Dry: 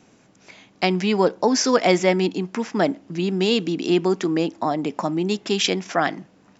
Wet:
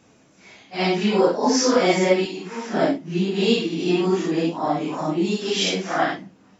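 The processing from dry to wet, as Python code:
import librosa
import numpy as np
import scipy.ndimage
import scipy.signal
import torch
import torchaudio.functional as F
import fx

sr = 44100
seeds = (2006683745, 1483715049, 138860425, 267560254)

y = fx.phase_scramble(x, sr, seeds[0], window_ms=200)
y = fx.low_shelf(y, sr, hz=360.0, db=-11.0, at=(2.25, 2.73))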